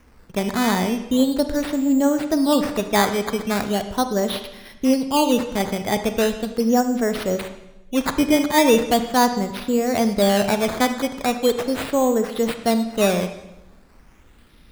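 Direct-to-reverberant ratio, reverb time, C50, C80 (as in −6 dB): 8.5 dB, 0.90 s, 9.5 dB, 12.0 dB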